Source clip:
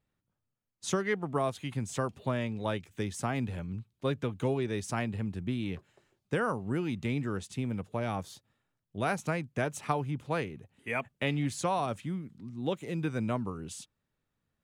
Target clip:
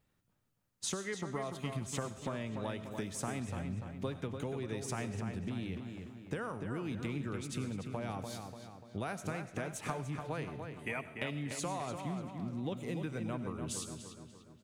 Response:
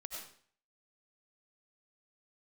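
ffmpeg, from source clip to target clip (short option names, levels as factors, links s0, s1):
-filter_complex "[0:a]acompressor=threshold=0.00891:ratio=6,asplit=2[s0][s1];[s1]adelay=293,lowpass=f=3400:p=1,volume=0.501,asplit=2[s2][s3];[s3]adelay=293,lowpass=f=3400:p=1,volume=0.51,asplit=2[s4][s5];[s5]adelay=293,lowpass=f=3400:p=1,volume=0.51,asplit=2[s6][s7];[s7]adelay=293,lowpass=f=3400:p=1,volume=0.51,asplit=2[s8][s9];[s9]adelay=293,lowpass=f=3400:p=1,volume=0.51,asplit=2[s10][s11];[s11]adelay=293,lowpass=f=3400:p=1,volume=0.51[s12];[s0][s2][s4][s6][s8][s10][s12]amix=inputs=7:normalize=0,asplit=2[s13][s14];[1:a]atrim=start_sample=2205,highshelf=f=4200:g=10[s15];[s14][s15]afir=irnorm=-1:irlink=0,volume=0.335[s16];[s13][s16]amix=inputs=2:normalize=0,volume=1.41"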